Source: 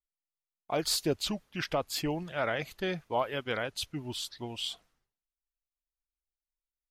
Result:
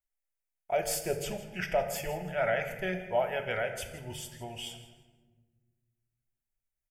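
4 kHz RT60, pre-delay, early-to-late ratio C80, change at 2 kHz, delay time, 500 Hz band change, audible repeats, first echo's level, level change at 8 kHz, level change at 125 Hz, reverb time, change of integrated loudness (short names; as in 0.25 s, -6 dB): 0.85 s, 3 ms, 10.0 dB, +2.0 dB, 0.163 s, +3.0 dB, 2, -16.5 dB, 0.0 dB, -1.5 dB, 1.4 s, 0.0 dB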